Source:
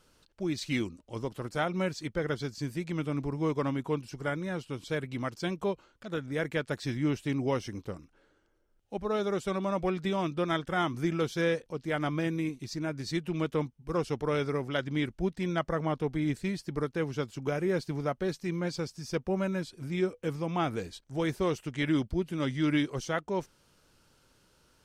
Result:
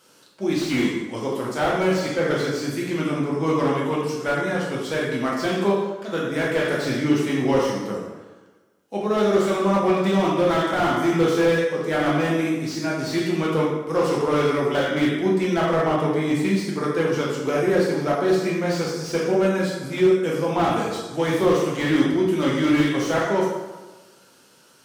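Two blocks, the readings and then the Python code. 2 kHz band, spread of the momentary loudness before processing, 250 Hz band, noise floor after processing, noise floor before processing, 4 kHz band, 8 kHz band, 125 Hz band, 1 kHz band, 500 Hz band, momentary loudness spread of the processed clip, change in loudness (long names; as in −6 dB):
+10.0 dB, 6 LU, +10.0 dB, −54 dBFS, −68 dBFS, +9.5 dB, +11.0 dB, +6.0 dB, +11.0 dB, +11.5 dB, 6 LU, +10.0 dB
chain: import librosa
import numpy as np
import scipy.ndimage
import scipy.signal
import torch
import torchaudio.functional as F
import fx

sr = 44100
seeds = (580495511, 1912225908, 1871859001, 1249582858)

y = scipy.signal.sosfilt(scipy.signal.butter(2, 210.0, 'highpass', fs=sr, output='sos'), x)
y = fx.high_shelf(y, sr, hz=5200.0, db=4.5)
y = fx.rev_plate(y, sr, seeds[0], rt60_s=1.2, hf_ratio=0.65, predelay_ms=0, drr_db=-4.0)
y = fx.slew_limit(y, sr, full_power_hz=58.0)
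y = y * 10.0 ** (6.0 / 20.0)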